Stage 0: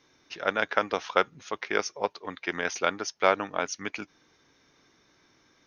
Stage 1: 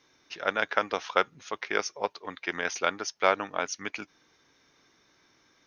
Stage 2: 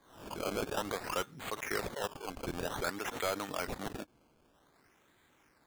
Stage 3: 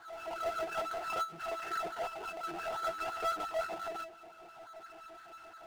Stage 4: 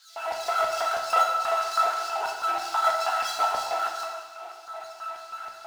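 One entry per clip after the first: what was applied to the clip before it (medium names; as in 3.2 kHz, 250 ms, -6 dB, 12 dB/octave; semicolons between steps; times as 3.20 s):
bass shelf 490 Hz -4 dB
decimation with a swept rate 16×, swing 100% 0.53 Hz; saturation -24 dBFS, distortion -5 dB; swell ahead of each attack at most 87 dB/s; trim -3 dB
pitch-class resonator E, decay 0.12 s; LFO high-pass sine 5.8 Hz 580–1500 Hz; power-law waveshaper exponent 0.5; trim +4 dB
LFO high-pass square 3.1 Hz 830–4800 Hz; phaser 0.87 Hz, delay 1 ms, feedback 21%; plate-style reverb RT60 1.3 s, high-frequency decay 0.95×, DRR 0 dB; trim +8.5 dB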